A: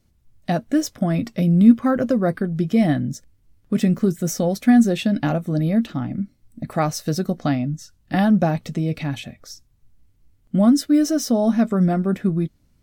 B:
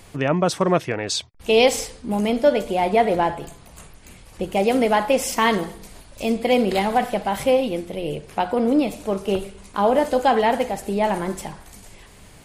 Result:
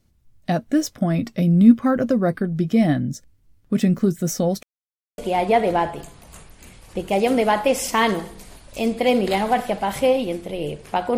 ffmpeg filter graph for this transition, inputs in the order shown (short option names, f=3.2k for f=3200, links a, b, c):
-filter_complex "[0:a]apad=whole_dur=11.17,atrim=end=11.17,asplit=2[a][b];[a]atrim=end=4.63,asetpts=PTS-STARTPTS,afade=t=out:st=4.626:d=0.004:c=hsin[c];[b]atrim=start=4.63:end=5.18,asetpts=PTS-STARTPTS,volume=0[d];[1:a]atrim=start=2.62:end=8.61,asetpts=PTS-STARTPTS,afade=t=in:d=0.004:c=hsin[e];[c][d][e]concat=n=3:v=0:a=1"